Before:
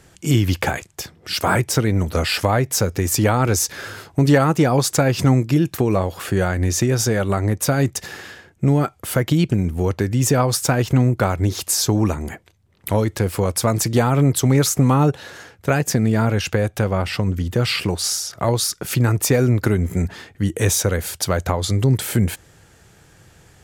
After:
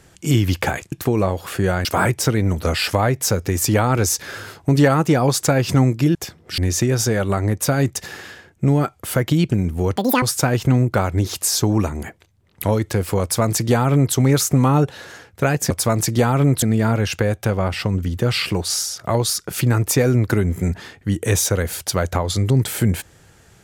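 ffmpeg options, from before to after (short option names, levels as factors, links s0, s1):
-filter_complex "[0:a]asplit=9[s0][s1][s2][s3][s4][s5][s6][s7][s8];[s0]atrim=end=0.922[s9];[s1]atrim=start=5.648:end=6.582[s10];[s2]atrim=start=1.348:end=5.652[s11];[s3]atrim=start=0.918:end=1.352[s12];[s4]atrim=start=6.578:end=9.964[s13];[s5]atrim=start=9.96:end=10.48,asetpts=PTS-STARTPTS,asetrate=87318,aresample=44100[s14];[s6]atrim=start=10.476:end=15.962[s15];[s7]atrim=start=13.478:end=14.402[s16];[s8]atrim=start=15.958[s17];[s9][s10]acrossfade=d=0.004:c1=hsin:c2=hsin[s18];[s18][s11]acrossfade=d=0.004:c1=hsin:c2=hsin[s19];[s19][s12]acrossfade=d=0.004:c1=hsin:c2=hsin[s20];[s20][s13]acrossfade=d=0.004:c1=hsin:c2=hsin[s21];[s21][s14]acrossfade=d=0.004:c1=hsin:c2=hsin[s22];[s22][s15]acrossfade=d=0.004:c1=hsin:c2=hsin[s23];[s23][s16]acrossfade=d=0.004:c1=hsin:c2=hsin[s24];[s24][s17]acrossfade=d=0.004:c1=hsin:c2=hsin"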